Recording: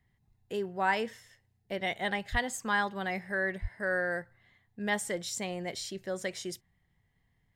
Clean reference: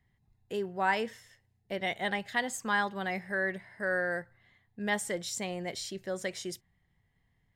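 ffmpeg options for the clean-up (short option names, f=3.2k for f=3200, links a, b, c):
-filter_complex "[0:a]asplit=3[a][b][c];[a]afade=t=out:st=2.31:d=0.02[d];[b]highpass=f=140:w=0.5412,highpass=f=140:w=1.3066,afade=t=in:st=2.31:d=0.02,afade=t=out:st=2.43:d=0.02[e];[c]afade=t=in:st=2.43:d=0.02[f];[d][e][f]amix=inputs=3:normalize=0,asplit=3[g][h][i];[g]afade=t=out:st=3.61:d=0.02[j];[h]highpass=f=140:w=0.5412,highpass=f=140:w=1.3066,afade=t=in:st=3.61:d=0.02,afade=t=out:st=3.73:d=0.02[k];[i]afade=t=in:st=3.73:d=0.02[l];[j][k][l]amix=inputs=3:normalize=0"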